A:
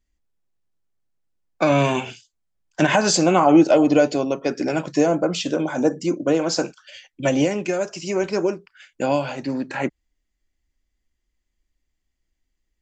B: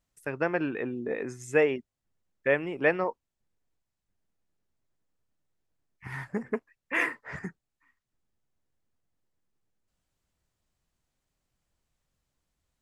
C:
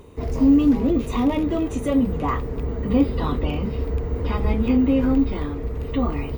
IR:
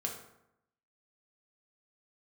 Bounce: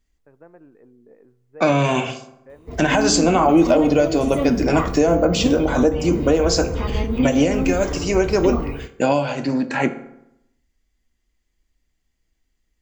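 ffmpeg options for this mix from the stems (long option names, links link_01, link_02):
-filter_complex "[0:a]volume=1dB,asplit=2[link_01][link_02];[link_02]volume=-4dB[link_03];[1:a]lowpass=1000,volume=-19dB,asplit=2[link_04][link_05];[link_05]volume=-16.5dB[link_06];[2:a]dynaudnorm=framelen=150:gausssize=5:maxgain=10.5dB,adelay=2500,volume=-10.5dB,asplit=2[link_07][link_08];[link_08]volume=-7dB[link_09];[3:a]atrim=start_sample=2205[link_10];[link_03][link_06][link_09]amix=inputs=3:normalize=0[link_11];[link_11][link_10]afir=irnorm=-1:irlink=0[link_12];[link_01][link_04][link_07][link_12]amix=inputs=4:normalize=0,alimiter=limit=-6dB:level=0:latency=1:release=299"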